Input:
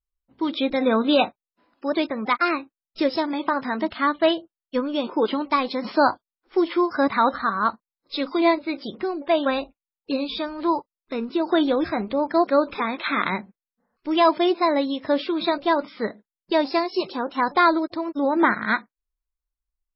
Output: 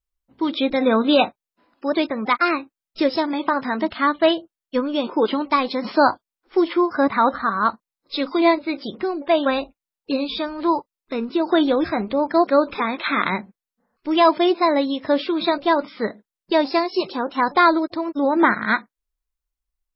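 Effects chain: 6.73–7.51 s: treble shelf 3.7 kHz -9 dB; trim +2.5 dB

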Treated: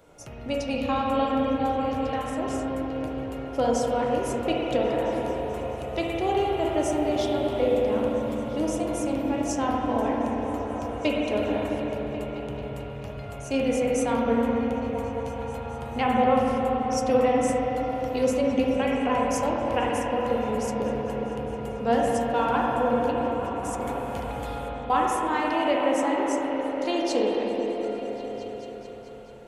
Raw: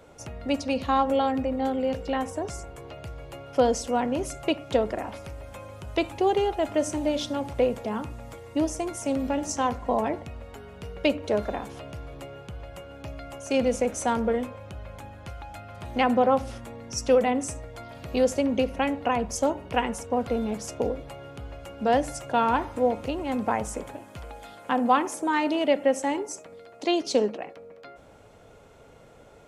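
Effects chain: treble shelf 9.5 kHz +7 dB; 23.11–24.90 s: compressor with a negative ratio -37 dBFS, ratio -1; flange 0.58 Hz, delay 6.1 ms, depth 4.3 ms, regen +72%; delay with an opening low-pass 218 ms, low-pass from 200 Hz, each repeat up 1 oct, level -3 dB; spring tank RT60 3.2 s, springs 30/51/55 ms, chirp 75 ms, DRR -3 dB

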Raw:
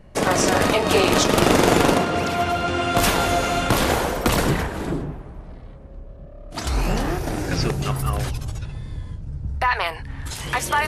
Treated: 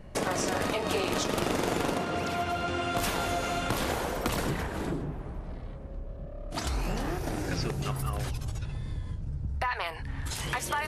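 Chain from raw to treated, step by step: compression 2.5:1, threshold -32 dBFS, peak gain reduction 13.5 dB

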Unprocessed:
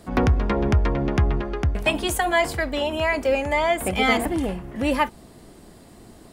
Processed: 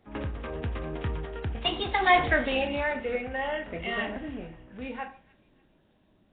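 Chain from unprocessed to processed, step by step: Doppler pass-by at 2.26 s, 40 m/s, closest 9.2 m; reverberation RT60 0.40 s, pre-delay 12 ms, DRR 6.5 dB; gain riding within 4 dB 2 s; treble shelf 2.4 kHz +8 dB; feedback echo behind a high-pass 293 ms, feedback 37%, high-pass 1.7 kHz, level -21 dB; Nellymoser 16 kbps 8 kHz

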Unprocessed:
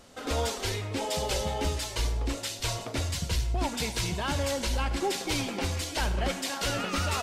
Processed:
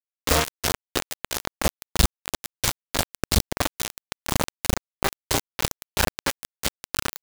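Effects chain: peaking EQ 1.1 kHz -3 dB 0.22 oct; bucket-brigade echo 291 ms, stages 4096, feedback 45%, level -4 dB; dynamic bell 2.5 kHz, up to -6 dB, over -53 dBFS, Q 4.9; gain riding 0.5 s; reverb removal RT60 1.5 s; bit crusher 4-bit; trim +7 dB

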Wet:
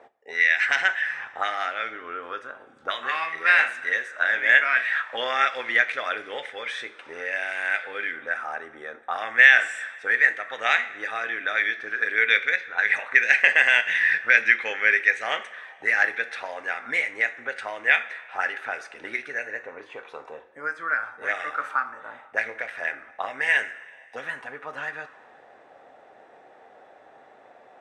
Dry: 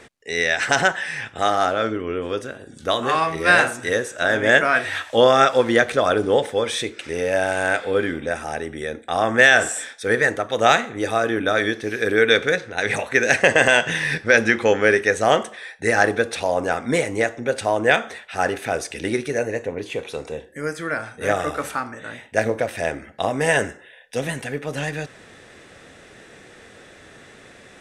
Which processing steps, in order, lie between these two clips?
auto-wah 720–2100 Hz, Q 3.3, up, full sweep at -17.5 dBFS; on a send: reverberation, pre-delay 3 ms, DRR 10 dB; on the sum: trim +4.5 dB

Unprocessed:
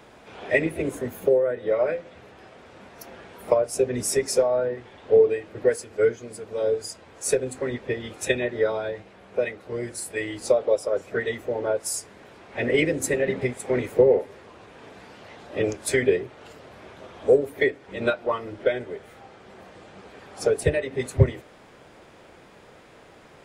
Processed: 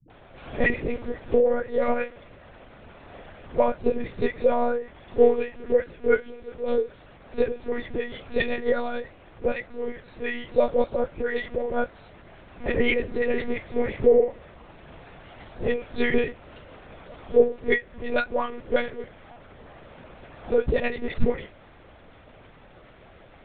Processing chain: phase dispersion highs, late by 106 ms, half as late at 330 Hz; monotone LPC vocoder at 8 kHz 240 Hz

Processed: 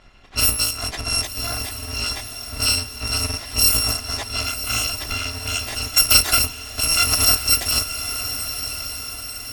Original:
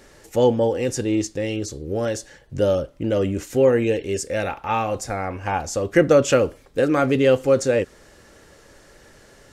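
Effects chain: bit-reversed sample order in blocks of 256 samples; level-controlled noise filter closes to 2.9 kHz, open at -13 dBFS; treble shelf 4.9 kHz -7 dB; echo that smears into a reverb 1054 ms, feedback 55%, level -9.5 dB; trim +6.5 dB

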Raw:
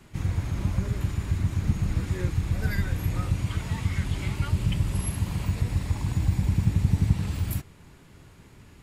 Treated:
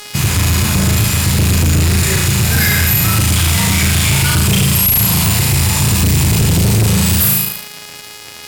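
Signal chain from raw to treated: mains buzz 400 Hz, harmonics 12, -50 dBFS -1 dB/octave; pre-emphasis filter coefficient 0.8; flutter echo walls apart 6.5 m, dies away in 0.92 s; on a send at -15 dB: reverberation RT60 0.35 s, pre-delay 34 ms; on the sum: speed mistake 24 fps film run at 25 fps; high-pass 92 Hz 24 dB/octave; peaking EQ 320 Hz -8 dB 0.94 oct; band-stop 540 Hz, Q 13; fuzz box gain 43 dB, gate -51 dBFS; trim +4 dB

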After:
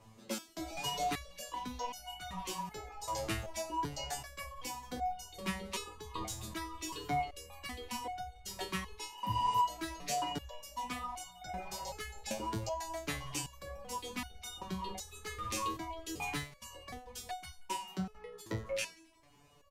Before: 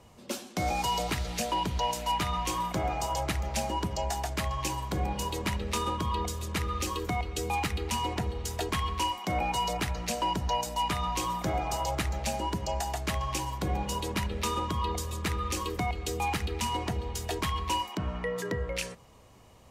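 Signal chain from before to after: reverb removal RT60 0.75 s; 9.14–9.56 s: spectral replace 310–11000 Hz both; 16.43–18.62 s: trance gate "x.x..xxxx.xx" 167 bpm -24 dB; frequency-shifting echo 89 ms, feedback 64%, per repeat -73 Hz, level -19.5 dB; resonator arpeggio 2.6 Hz 110–740 Hz; trim +7 dB

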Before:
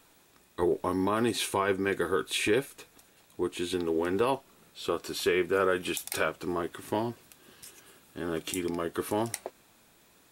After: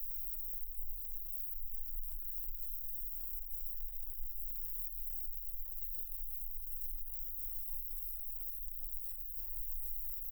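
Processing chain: spectral levelling over time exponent 0.4; recorder AGC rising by 14 dB/s; treble shelf 2.2 kHz -2.5 dB; frequency-shifting echo 204 ms, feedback 54%, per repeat -74 Hz, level -20 dB; flange 1.3 Hz, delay 6.5 ms, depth 8.6 ms, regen -82%; in parallel at -10 dB: fuzz box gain 42 dB, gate -47 dBFS; on the sum: inverse Chebyshev band-stop 140–5500 Hz, stop band 80 dB; peak limiter -37.5 dBFS, peak gain reduction 8.5 dB; peaking EQ 720 Hz +10 dB 0.72 oct; loudspeaker Doppler distortion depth 0.28 ms; trim +11.5 dB

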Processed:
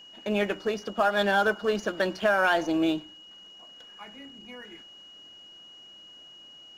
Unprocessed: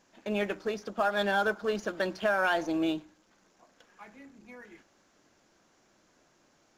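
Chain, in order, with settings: whistle 2.9 kHz -51 dBFS; trim +4 dB

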